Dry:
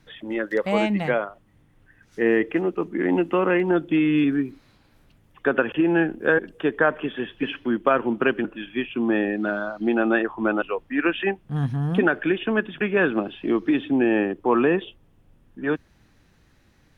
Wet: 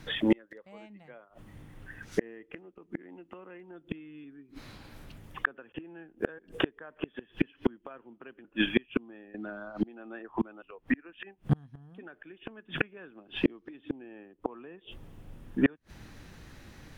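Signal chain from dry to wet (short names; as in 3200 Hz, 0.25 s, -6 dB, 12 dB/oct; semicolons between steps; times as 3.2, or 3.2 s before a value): flipped gate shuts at -20 dBFS, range -37 dB; 9.34–11.13 three-band squash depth 70%; gain +9 dB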